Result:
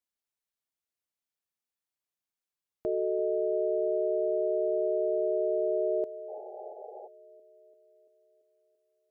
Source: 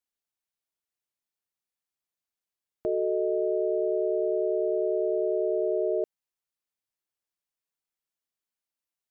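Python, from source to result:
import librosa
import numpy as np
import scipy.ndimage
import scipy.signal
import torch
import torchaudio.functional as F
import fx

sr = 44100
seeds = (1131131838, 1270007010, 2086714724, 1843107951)

y = fx.echo_wet_bandpass(x, sr, ms=339, feedback_pct=61, hz=410.0, wet_db=-15)
y = fx.spec_paint(y, sr, seeds[0], shape='noise', start_s=6.28, length_s=0.8, low_hz=360.0, high_hz=860.0, level_db=-43.0)
y = F.gain(torch.from_numpy(y), -2.5).numpy()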